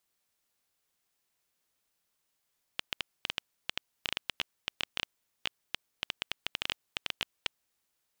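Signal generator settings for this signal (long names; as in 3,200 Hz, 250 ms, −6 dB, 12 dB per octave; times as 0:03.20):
Geiger counter clicks 8.3 per second −12.5 dBFS 4.88 s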